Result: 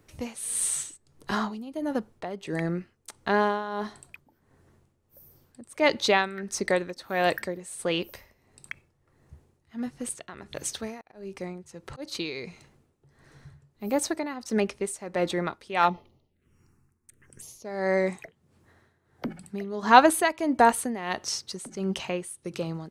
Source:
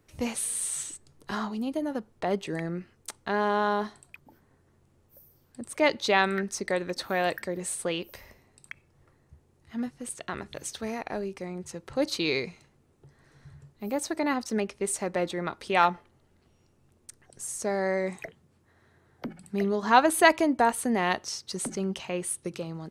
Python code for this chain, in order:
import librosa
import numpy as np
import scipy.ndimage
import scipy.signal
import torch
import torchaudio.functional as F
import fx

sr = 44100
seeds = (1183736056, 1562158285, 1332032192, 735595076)

y = fx.auto_swell(x, sr, attack_ms=369.0, at=(11.0, 12.15))
y = fx.env_phaser(y, sr, low_hz=540.0, high_hz=1600.0, full_db=-39.0, at=(15.88, 17.64), fade=0.02)
y = y * (1.0 - 0.79 / 2.0 + 0.79 / 2.0 * np.cos(2.0 * np.pi * 1.5 * (np.arange(len(y)) / sr)))
y = y * 10.0 ** (4.5 / 20.0)